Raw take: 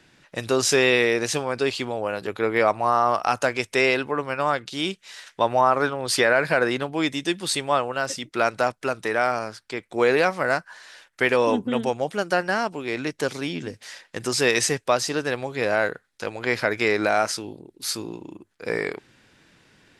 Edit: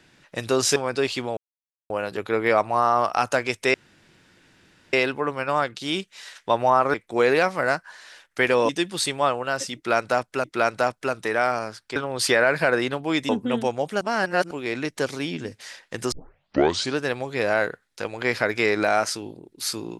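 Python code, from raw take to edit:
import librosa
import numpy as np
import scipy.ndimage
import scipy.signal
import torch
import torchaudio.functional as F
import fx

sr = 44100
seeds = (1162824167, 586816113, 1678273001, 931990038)

y = fx.edit(x, sr, fx.cut(start_s=0.76, length_s=0.63),
    fx.insert_silence(at_s=2.0, length_s=0.53),
    fx.insert_room_tone(at_s=3.84, length_s=1.19),
    fx.swap(start_s=5.85, length_s=1.33, other_s=9.76, other_length_s=1.75),
    fx.repeat(start_s=8.24, length_s=0.69, count=2),
    fx.reverse_span(start_s=12.23, length_s=0.5),
    fx.tape_start(start_s=14.34, length_s=0.86), tone=tone)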